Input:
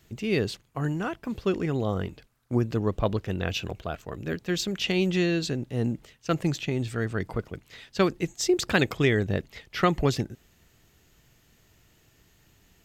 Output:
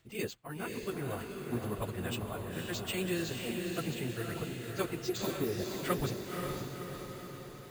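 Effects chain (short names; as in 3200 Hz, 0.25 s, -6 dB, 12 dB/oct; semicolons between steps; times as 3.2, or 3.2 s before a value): careless resampling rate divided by 4×, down filtered, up hold; low shelf 490 Hz -4.5 dB; plain phase-vocoder stretch 0.6×; spectral repair 5.21–5.6, 1100–9900 Hz both; diffused feedback echo 0.524 s, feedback 59%, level -3.5 dB; gain -4 dB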